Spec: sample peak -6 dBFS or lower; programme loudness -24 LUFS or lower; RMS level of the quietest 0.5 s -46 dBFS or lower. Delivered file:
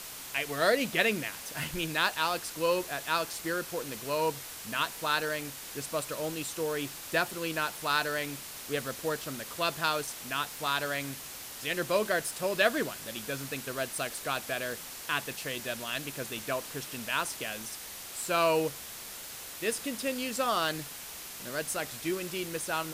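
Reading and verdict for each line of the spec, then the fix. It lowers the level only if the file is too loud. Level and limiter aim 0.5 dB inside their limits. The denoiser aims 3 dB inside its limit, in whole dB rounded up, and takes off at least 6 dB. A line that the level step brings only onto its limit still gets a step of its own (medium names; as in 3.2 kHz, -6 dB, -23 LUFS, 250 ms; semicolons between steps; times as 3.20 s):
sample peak -12.5 dBFS: pass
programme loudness -32.0 LUFS: pass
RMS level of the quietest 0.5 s -43 dBFS: fail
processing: noise reduction 6 dB, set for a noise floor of -43 dBFS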